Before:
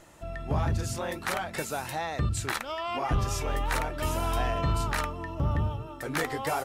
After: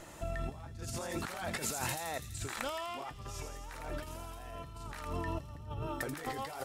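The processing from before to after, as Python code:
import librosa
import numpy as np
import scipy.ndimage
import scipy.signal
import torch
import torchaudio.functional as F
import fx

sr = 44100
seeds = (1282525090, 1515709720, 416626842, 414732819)

y = fx.over_compress(x, sr, threshold_db=-38.0, ratio=-1.0)
y = fx.echo_wet_highpass(y, sr, ms=83, feedback_pct=71, hz=4500.0, wet_db=-4)
y = F.gain(torch.from_numpy(y), -3.5).numpy()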